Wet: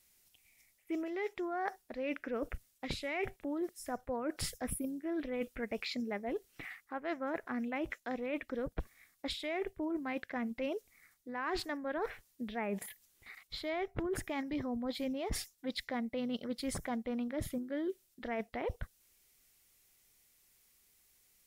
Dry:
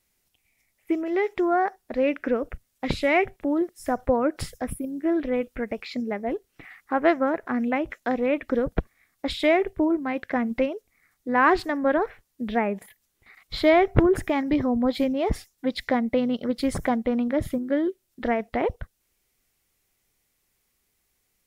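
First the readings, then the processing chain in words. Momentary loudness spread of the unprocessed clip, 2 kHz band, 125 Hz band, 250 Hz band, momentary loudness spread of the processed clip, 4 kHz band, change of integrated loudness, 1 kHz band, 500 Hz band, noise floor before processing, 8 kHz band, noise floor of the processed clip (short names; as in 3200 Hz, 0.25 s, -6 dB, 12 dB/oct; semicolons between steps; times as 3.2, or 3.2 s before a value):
11 LU, -12.5 dB, -14.0 dB, -13.5 dB, 7 LU, -7.0 dB, -14.0 dB, -15.0 dB, -14.5 dB, -73 dBFS, n/a, -73 dBFS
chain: high shelf 2300 Hz +8 dB; reverse; compressor 10:1, threshold -31 dBFS, peak gain reduction 20 dB; reverse; gain -3 dB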